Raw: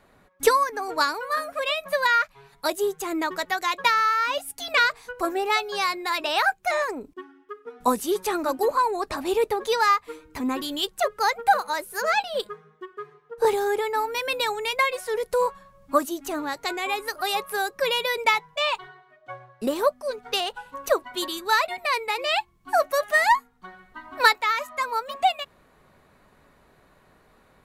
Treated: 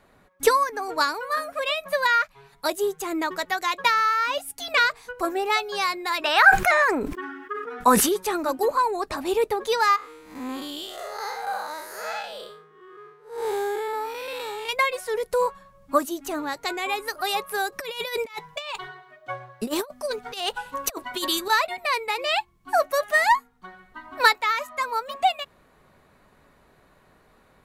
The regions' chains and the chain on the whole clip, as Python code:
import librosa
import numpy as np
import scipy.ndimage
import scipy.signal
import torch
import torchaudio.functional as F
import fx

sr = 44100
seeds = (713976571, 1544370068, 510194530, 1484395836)

y = fx.chain(x, sr, fx.peak_eq(hz=1600.0, db=9.5, octaves=1.3),
    fx.sustainer(db_per_s=45.0), at=(6.22, 8.09))
y = fx.chain(y, sr, fx.spec_blur(span_ms=182.0),
    fx.low_shelf(hz=350.0, db=-5.0), at=(9.96, 14.69))
y = fx.chain(y, sr, fx.high_shelf(hz=2800.0, db=4.5),
    fx.over_compress(threshold_db=-28.0, ratio=-0.5), at=(17.72, 21.5))